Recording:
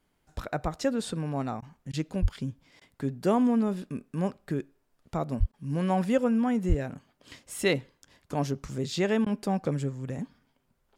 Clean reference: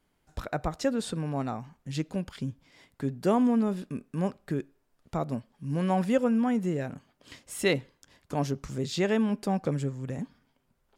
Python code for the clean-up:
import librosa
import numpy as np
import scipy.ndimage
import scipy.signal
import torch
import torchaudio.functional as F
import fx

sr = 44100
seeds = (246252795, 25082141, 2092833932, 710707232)

y = fx.highpass(x, sr, hz=140.0, slope=24, at=(2.21, 2.33), fade=0.02)
y = fx.highpass(y, sr, hz=140.0, slope=24, at=(5.39, 5.51), fade=0.02)
y = fx.highpass(y, sr, hz=140.0, slope=24, at=(6.68, 6.8), fade=0.02)
y = fx.fix_interpolate(y, sr, at_s=(1.61, 1.92, 2.8, 5.52, 9.25), length_ms=12.0)